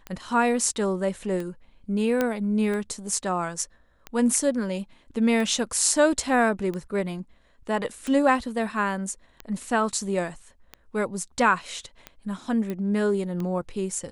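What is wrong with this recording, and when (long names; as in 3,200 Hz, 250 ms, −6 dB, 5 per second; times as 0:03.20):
scratch tick 45 rpm −20 dBFS
0:02.21: click −10 dBFS
0:12.70: click −19 dBFS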